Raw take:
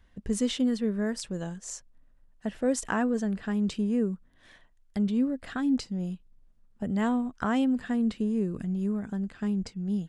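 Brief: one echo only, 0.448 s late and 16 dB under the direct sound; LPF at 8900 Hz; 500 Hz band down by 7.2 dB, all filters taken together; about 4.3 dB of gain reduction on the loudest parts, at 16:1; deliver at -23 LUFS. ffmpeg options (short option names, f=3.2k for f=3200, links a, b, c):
-af "lowpass=8.9k,equalizer=f=500:t=o:g=-8.5,acompressor=threshold=-28dB:ratio=16,aecho=1:1:448:0.158,volume=11dB"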